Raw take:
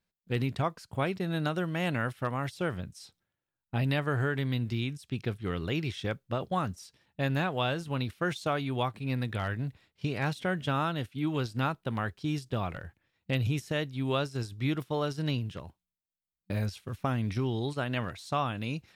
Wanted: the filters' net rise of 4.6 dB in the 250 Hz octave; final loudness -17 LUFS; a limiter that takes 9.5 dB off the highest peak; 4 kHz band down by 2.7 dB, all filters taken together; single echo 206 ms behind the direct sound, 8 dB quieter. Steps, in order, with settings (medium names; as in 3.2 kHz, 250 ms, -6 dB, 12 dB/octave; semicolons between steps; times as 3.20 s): peaking EQ 250 Hz +6 dB; peaking EQ 4 kHz -3.5 dB; peak limiter -24 dBFS; delay 206 ms -8 dB; trim +16.5 dB